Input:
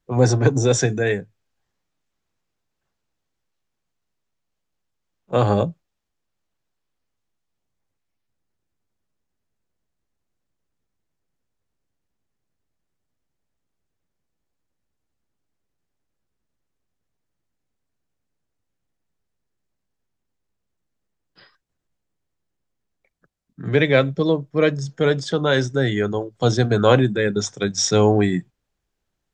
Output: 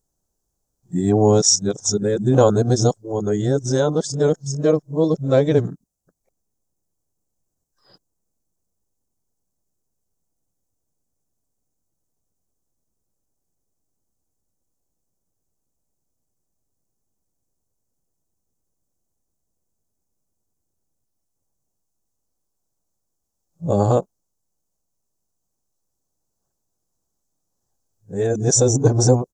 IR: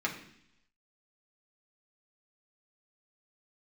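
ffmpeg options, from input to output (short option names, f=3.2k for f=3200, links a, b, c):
-af "areverse,firequalizer=gain_entry='entry(780,0);entry(2100,-20);entry(6200,8)':delay=0.05:min_phase=1,volume=1dB"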